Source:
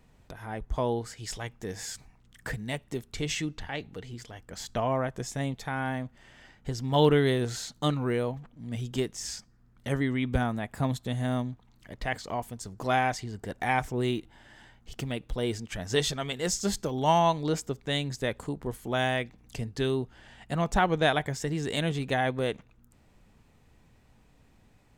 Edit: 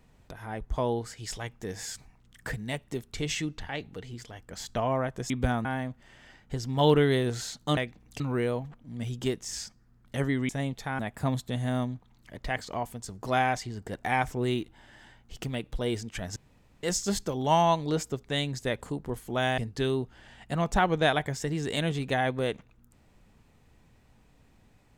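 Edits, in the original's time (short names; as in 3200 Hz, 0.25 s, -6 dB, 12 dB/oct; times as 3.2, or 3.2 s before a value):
5.3–5.8 swap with 10.21–10.56
15.93–16.4 room tone
19.15–19.58 move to 7.92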